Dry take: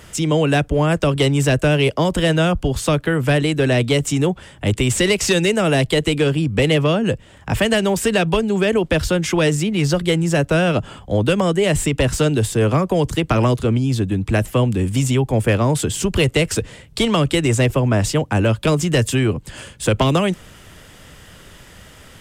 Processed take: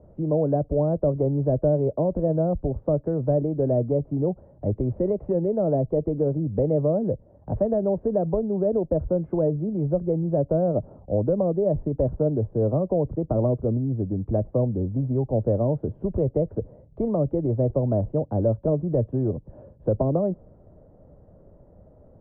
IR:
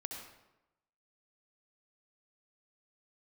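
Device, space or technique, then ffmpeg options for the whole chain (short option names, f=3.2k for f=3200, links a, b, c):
under water: -af "lowpass=f=710:w=0.5412,lowpass=f=710:w=1.3066,equalizer=f=590:t=o:w=0.42:g=7,adynamicequalizer=threshold=0.0178:dfrequency=1800:dqfactor=0.7:tfrequency=1800:tqfactor=0.7:attack=5:release=100:ratio=0.375:range=3.5:mode=cutabove:tftype=highshelf,volume=-7dB"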